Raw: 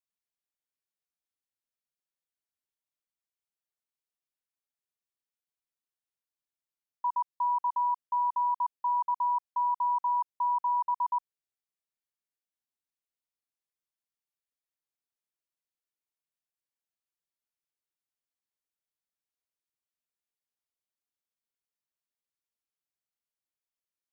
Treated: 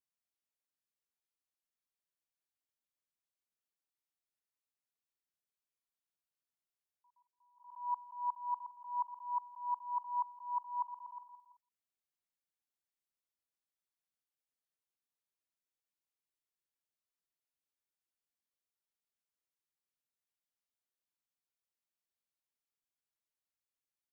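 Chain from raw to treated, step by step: feedback delay 168 ms, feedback 44%, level -22 dB; attacks held to a fixed rise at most 120 dB/s; trim -4 dB

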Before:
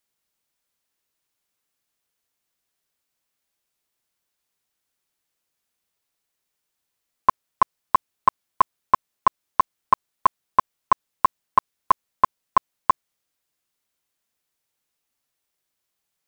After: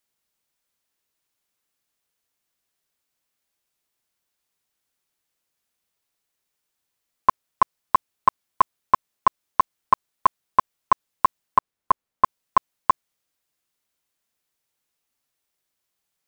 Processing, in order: 11.58–12.24 s: treble shelf 2.3 kHz -8.5 dB

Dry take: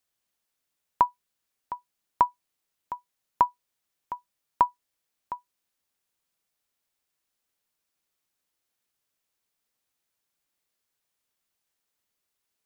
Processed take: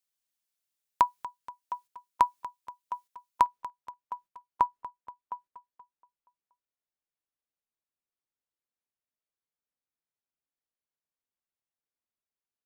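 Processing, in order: gate -49 dBFS, range -9 dB; treble shelf 2.4 kHz +8 dB, from 3.46 s -6 dB, from 4.66 s -11 dB; feedback delay 238 ms, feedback 58%, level -16.5 dB; trim -2.5 dB

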